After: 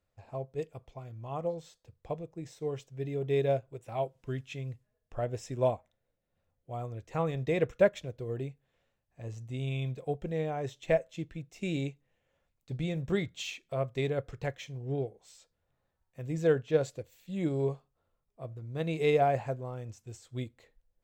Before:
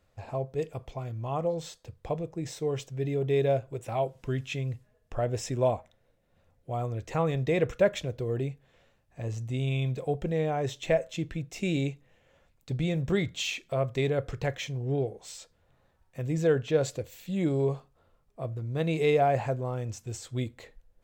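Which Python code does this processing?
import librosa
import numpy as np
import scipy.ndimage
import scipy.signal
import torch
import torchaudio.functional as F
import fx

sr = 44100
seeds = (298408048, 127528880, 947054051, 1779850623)

y = fx.upward_expand(x, sr, threshold_db=-43.0, expansion=1.5)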